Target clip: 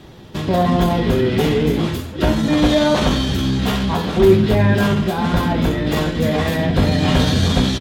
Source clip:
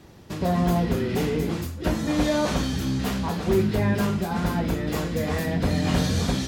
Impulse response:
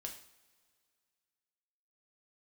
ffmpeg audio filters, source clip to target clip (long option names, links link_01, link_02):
-filter_complex "[0:a]equalizer=frequency=3400:width_type=o:width=0.73:gain=10.5,acontrast=40,atempo=0.83,asplit=2[link_01][link_02];[link_02]adelay=250,highpass=300,lowpass=3400,asoftclip=type=hard:threshold=-26dB,volume=-13dB[link_03];[link_01][link_03]amix=inputs=2:normalize=0,asplit=2[link_04][link_05];[1:a]atrim=start_sample=2205,lowpass=2300[link_06];[link_05][link_06]afir=irnorm=-1:irlink=0,volume=3dB[link_07];[link_04][link_07]amix=inputs=2:normalize=0,volume=-2.5dB"